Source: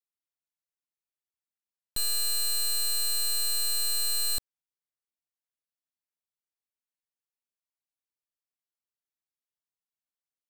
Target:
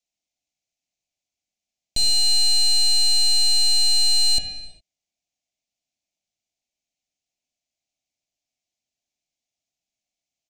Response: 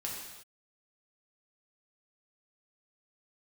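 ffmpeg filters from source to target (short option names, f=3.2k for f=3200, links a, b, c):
-filter_complex "[0:a]firequalizer=gain_entry='entry(300,0);entry(450,-9);entry(670,6);entry(1200,-29);entry(2200,3);entry(6600,10);entry(9400,-8);entry(15000,-19)':delay=0.05:min_phase=1,asplit=2[a][b];[1:a]atrim=start_sample=2205,asetrate=39690,aresample=44100,lowpass=2.5k[c];[b][c]afir=irnorm=-1:irlink=0,volume=-1dB[d];[a][d]amix=inputs=2:normalize=0,volume=5dB"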